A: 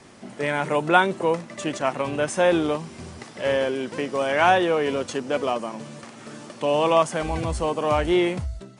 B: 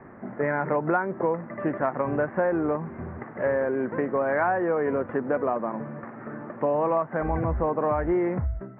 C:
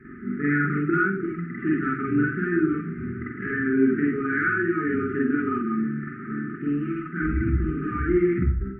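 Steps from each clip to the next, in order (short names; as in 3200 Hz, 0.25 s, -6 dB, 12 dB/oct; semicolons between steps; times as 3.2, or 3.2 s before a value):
steep low-pass 1900 Hz 48 dB/oct; compressor 6:1, threshold -24 dBFS, peak gain reduction 12.5 dB; gain +3 dB
brick-wall FIR band-stop 420–1200 Hz; reverb, pre-delay 41 ms, DRR -5 dB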